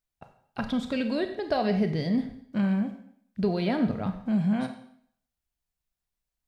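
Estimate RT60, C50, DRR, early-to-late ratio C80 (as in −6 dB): 0.65 s, 9.5 dB, 7.0 dB, 12.0 dB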